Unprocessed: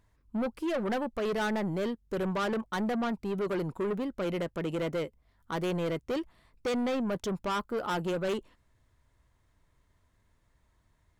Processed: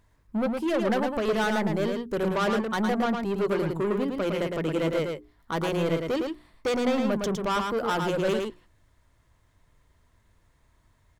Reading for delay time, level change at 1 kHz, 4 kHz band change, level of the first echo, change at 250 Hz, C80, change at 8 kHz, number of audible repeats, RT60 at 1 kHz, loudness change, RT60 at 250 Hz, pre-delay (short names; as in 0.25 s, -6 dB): 0.11 s, +6.0 dB, +6.0 dB, -4.5 dB, +5.0 dB, none, +6.0 dB, 1, none, +5.5 dB, none, none